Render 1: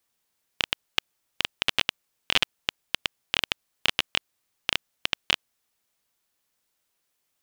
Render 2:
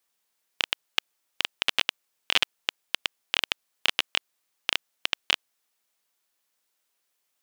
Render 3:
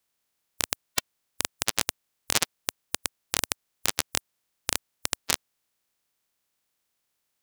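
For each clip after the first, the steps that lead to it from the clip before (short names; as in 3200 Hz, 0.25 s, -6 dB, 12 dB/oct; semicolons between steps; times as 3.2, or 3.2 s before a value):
HPF 380 Hz 6 dB/oct
spectral limiter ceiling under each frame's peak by 28 dB; gain -1 dB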